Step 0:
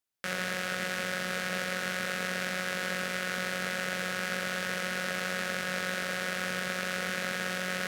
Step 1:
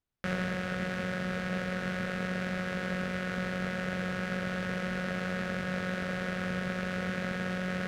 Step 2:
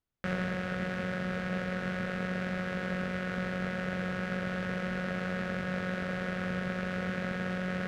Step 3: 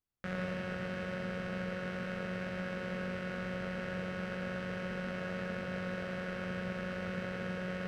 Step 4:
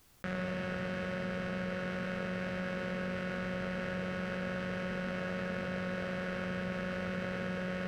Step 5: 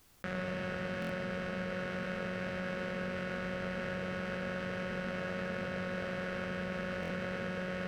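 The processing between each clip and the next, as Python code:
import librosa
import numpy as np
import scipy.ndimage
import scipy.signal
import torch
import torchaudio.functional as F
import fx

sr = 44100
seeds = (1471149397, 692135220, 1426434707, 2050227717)

y1 = fx.riaa(x, sr, side='playback')
y1 = fx.rider(y1, sr, range_db=10, speed_s=0.5)
y1 = y1 * 10.0 ** (-2.0 / 20.0)
y2 = fx.high_shelf(y1, sr, hz=4100.0, db=-7.0)
y3 = fx.rev_plate(y2, sr, seeds[0], rt60_s=0.79, hf_ratio=0.95, predelay_ms=80, drr_db=2.5)
y3 = y3 * 10.0 ** (-6.0 / 20.0)
y4 = fx.env_flatten(y3, sr, amount_pct=50)
y5 = fx.hum_notches(y4, sr, base_hz=60, count=3)
y5 = fx.buffer_glitch(y5, sr, at_s=(1.0, 7.01), block=1024, repeats=3)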